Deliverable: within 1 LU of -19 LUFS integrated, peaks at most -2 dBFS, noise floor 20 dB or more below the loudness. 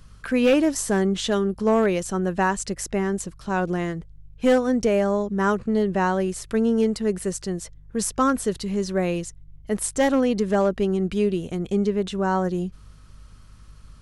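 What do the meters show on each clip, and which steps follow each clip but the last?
clipped samples 0.4%; clipping level -12.0 dBFS; hum 50 Hz; highest harmonic 150 Hz; hum level -45 dBFS; loudness -23.5 LUFS; peak level -12.0 dBFS; loudness target -19.0 LUFS
-> clip repair -12 dBFS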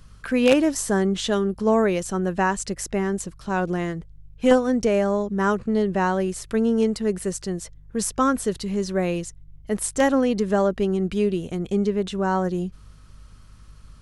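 clipped samples 0.0%; hum 50 Hz; highest harmonic 150 Hz; hum level -45 dBFS
-> de-hum 50 Hz, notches 3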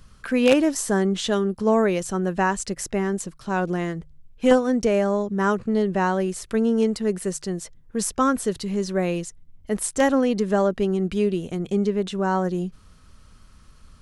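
hum not found; loudness -23.0 LUFS; peak level -3.0 dBFS; loudness target -19.0 LUFS
-> trim +4 dB; peak limiter -2 dBFS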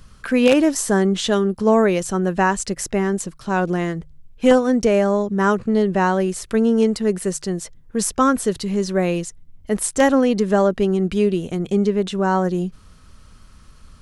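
loudness -19.5 LUFS; peak level -2.0 dBFS; noise floor -47 dBFS

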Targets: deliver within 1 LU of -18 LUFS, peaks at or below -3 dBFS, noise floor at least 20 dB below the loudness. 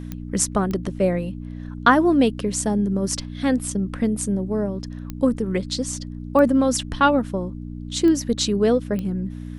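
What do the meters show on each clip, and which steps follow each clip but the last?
clicks found 6; hum 60 Hz; highest harmonic 300 Hz; hum level -31 dBFS; loudness -22.0 LUFS; peak level -2.0 dBFS; loudness target -18.0 LUFS
-> de-click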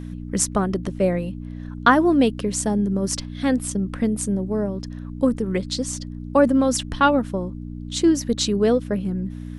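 clicks found 0; hum 60 Hz; highest harmonic 300 Hz; hum level -31 dBFS
-> de-hum 60 Hz, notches 5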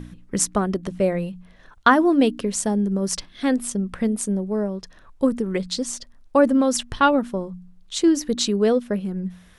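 hum not found; loudness -22.0 LUFS; peak level -2.0 dBFS; loudness target -18.0 LUFS
-> trim +4 dB; peak limiter -3 dBFS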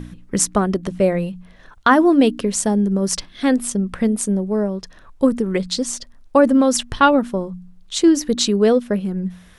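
loudness -18.5 LUFS; peak level -3.0 dBFS; noise floor -47 dBFS

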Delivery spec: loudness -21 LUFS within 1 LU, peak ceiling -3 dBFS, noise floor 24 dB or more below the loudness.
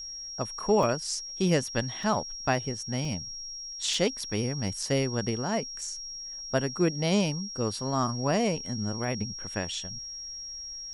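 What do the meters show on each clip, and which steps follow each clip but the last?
dropouts 4; longest dropout 2.1 ms; steady tone 5.6 kHz; tone level -37 dBFS; loudness -29.5 LUFS; peak level -11.0 dBFS; loudness target -21.0 LUFS
-> interpolate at 0.83/2.03/3.05/3.94 s, 2.1 ms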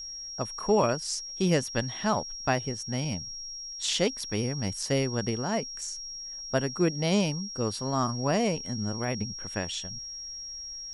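dropouts 0; steady tone 5.6 kHz; tone level -37 dBFS
-> band-stop 5.6 kHz, Q 30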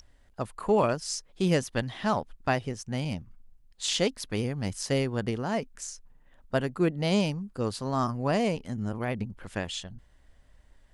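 steady tone not found; loudness -30.0 LUFS; peak level -11.0 dBFS; loudness target -21.0 LUFS
-> trim +9 dB; peak limiter -3 dBFS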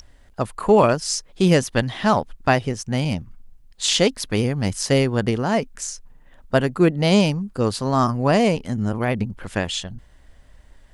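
loudness -21.0 LUFS; peak level -3.0 dBFS; noise floor -51 dBFS

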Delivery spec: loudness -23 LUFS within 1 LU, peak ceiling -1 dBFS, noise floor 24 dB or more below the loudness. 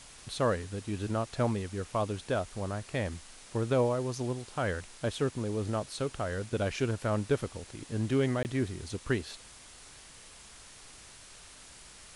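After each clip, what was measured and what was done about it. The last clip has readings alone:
dropouts 1; longest dropout 19 ms; noise floor -52 dBFS; noise floor target -57 dBFS; loudness -33.0 LUFS; peak level -16.0 dBFS; loudness target -23.0 LUFS
-> interpolate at 8.43 s, 19 ms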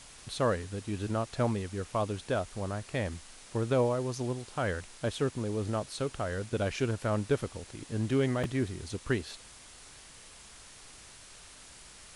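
dropouts 0; noise floor -52 dBFS; noise floor target -57 dBFS
-> noise reduction 6 dB, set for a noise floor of -52 dBFS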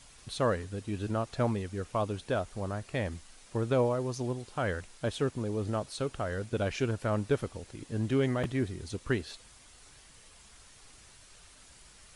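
noise floor -56 dBFS; noise floor target -57 dBFS
-> noise reduction 6 dB, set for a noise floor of -56 dBFS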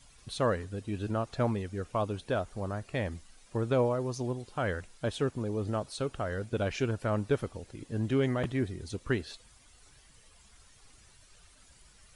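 noise floor -60 dBFS; loudness -33.0 LUFS; peak level -16.5 dBFS; loudness target -23.0 LUFS
-> trim +10 dB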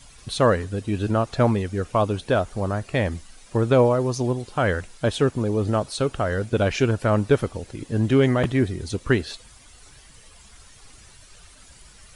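loudness -23.0 LUFS; peak level -6.5 dBFS; noise floor -50 dBFS

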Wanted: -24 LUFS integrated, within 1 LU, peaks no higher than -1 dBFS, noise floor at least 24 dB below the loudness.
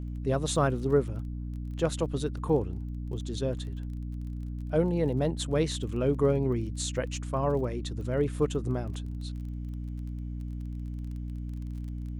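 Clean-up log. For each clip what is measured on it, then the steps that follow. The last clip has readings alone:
tick rate 24 per s; hum 60 Hz; highest harmonic 300 Hz; hum level -33 dBFS; loudness -31.0 LUFS; peak level -13.0 dBFS; loudness target -24.0 LUFS
-> de-click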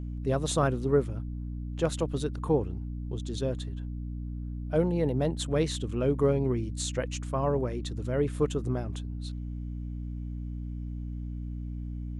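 tick rate 0 per s; hum 60 Hz; highest harmonic 300 Hz; hum level -33 dBFS
-> hum notches 60/120/180/240/300 Hz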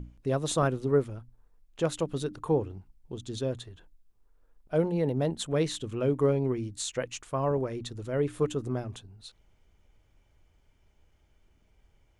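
hum not found; loudness -30.5 LUFS; peak level -13.0 dBFS; loudness target -24.0 LUFS
-> trim +6.5 dB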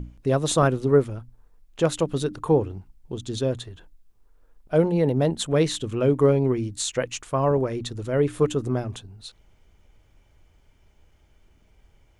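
loudness -24.0 LUFS; peak level -6.5 dBFS; noise floor -60 dBFS

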